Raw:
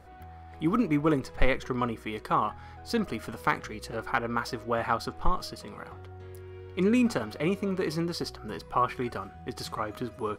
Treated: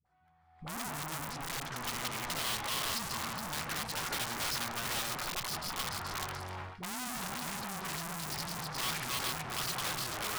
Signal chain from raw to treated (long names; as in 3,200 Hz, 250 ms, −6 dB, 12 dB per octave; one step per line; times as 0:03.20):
feedback delay that plays each chunk backwards 213 ms, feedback 49%, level −4 dB
noise gate with hold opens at −33 dBFS
low-pass filter 9,100 Hz 12 dB per octave
parametric band 150 Hz +14 dB 0.74 octaves
automatic gain control gain up to 15.5 dB
asymmetric clip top −39.5 dBFS, bottom −28 dBFS
low shelf with overshoot 630 Hz −11 dB, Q 1.5
wrap-around overflow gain 29 dB
all-pass dispersion highs, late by 58 ms, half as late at 400 Hz